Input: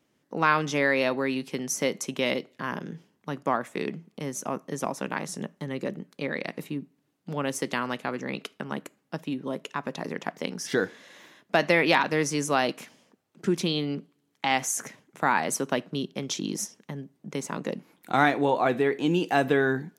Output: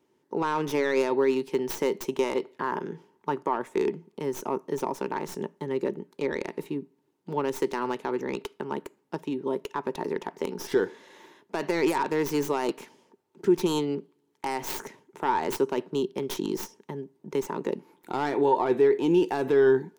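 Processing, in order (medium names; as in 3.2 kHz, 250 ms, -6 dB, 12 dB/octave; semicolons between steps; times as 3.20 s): tracing distortion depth 0.19 ms; 2.24–3.53 s: peaking EQ 1.2 kHz +6 dB 1.8 oct; peak limiter -17 dBFS, peak gain reduction 10.5 dB; small resonant body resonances 390/900 Hz, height 15 dB, ringing for 40 ms; trim -4 dB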